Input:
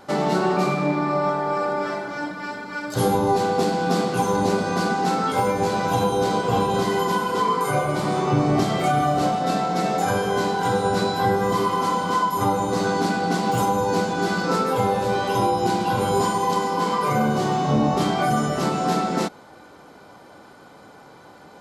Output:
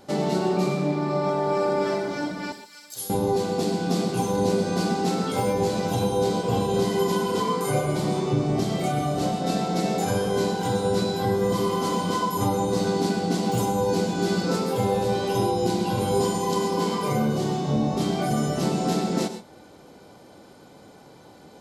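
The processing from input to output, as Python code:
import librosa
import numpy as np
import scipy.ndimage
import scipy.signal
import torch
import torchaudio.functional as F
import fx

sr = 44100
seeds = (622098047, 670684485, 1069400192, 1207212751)

y = fx.peak_eq(x, sr, hz=1300.0, db=-10.0, octaves=1.6)
y = fx.rider(y, sr, range_db=4, speed_s=0.5)
y = fx.pre_emphasis(y, sr, coefficient=0.97, at=(2.52, 3.1))
y = fx.rev_gated(y, sr, seeds[0], gate_ms=150, shape='rising', drr_db=10.0)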